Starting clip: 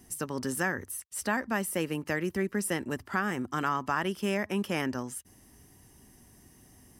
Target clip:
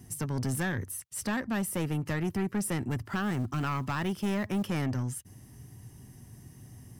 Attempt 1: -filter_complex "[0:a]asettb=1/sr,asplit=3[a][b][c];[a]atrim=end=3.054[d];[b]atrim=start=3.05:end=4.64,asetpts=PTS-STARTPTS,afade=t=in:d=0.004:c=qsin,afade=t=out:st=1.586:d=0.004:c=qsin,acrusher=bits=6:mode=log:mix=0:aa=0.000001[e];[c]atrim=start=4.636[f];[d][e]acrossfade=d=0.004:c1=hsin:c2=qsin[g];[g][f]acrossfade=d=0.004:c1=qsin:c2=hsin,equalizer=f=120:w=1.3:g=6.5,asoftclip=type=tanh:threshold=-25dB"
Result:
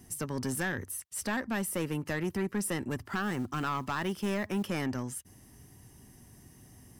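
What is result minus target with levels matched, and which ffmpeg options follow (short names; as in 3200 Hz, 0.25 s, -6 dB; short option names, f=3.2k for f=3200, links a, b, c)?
125 Hz band -4.5 dB
-filter_complex "[0:a]asettb=1/sr,asplit=3[a][b][c];[a]atrim=end=3.054[d];[b]atrim=start=3.05:end=4.64,asetpts=PTS-STARTPTS,afade=t=in:d=0.004:c=qsin,afade=t=out:st=1.586:d=0.004:c=qsin,acrusher=bits=6:mode=log:mix=0:aa=0.000001[e];[c]atrim=start=4.636[f];[d][e]acrossfade=d=0.004:c1=hsin:c2=qsin[g];[g][f]acrossfade=d=0.004:c1=qsin:c2=hsin,equalizer=f=120:w=1.3:g=16,asoftclip=type=tanh:threshold=-25dB"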